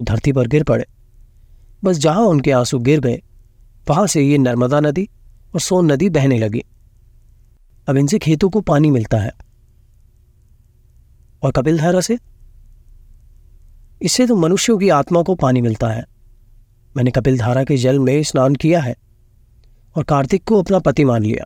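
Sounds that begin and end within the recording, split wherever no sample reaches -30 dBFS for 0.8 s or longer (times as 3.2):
1.83–6.61
7.88–9.4
11.43–12.17
14.01–16.03
16.96–18.93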